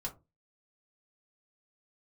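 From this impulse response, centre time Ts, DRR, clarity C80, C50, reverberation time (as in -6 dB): 11 ms, -2.0 dB, 22.5 dB, 15.0 dB, 0.25 s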